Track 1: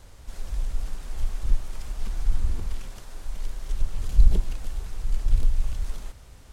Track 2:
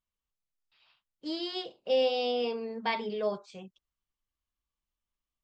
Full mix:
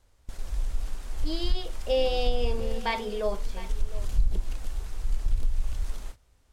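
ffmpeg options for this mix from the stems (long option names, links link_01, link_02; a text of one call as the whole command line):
ffmpeg -i stem1.wav -i stem2.wav -filter_complex "[0:a]volume=-1dB[link_01];[1:a]volume=2dB,asplit=2[link_02][link_03];[link_03]volume=-16.5dB,aecho=0:1:707:1[link_04];[link_01][link_02][link_04]amix=inputs=3:normalize=0,equalizer=frequency=150:width_type=o:width=0.73:gain=-5.5,agate=range=-14dB:threshold=-37dB:ratio=16:detection=peak,acompressor=threshold=-19dB:ratio=3" out.wav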